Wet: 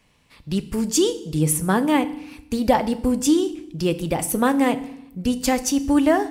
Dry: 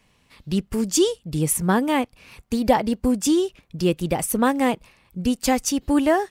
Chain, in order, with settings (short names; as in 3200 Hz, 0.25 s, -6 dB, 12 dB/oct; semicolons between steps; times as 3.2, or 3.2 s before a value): FDN reverb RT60 0.75 s, low-frequency decay 1.45×, high-frequency decay 0.95×, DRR 11 dB